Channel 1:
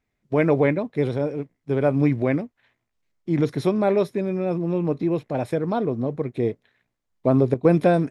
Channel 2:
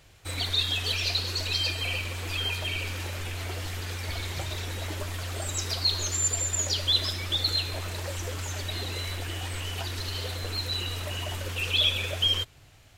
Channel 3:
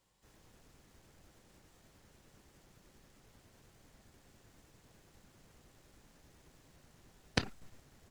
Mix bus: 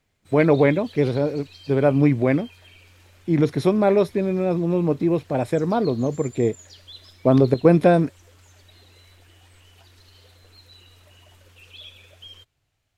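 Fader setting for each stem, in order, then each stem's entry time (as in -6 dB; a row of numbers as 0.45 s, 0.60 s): +2.5 dB, -19.0 dB, -10.0 dB; 0.00 s, 0.00 s, 0.00 s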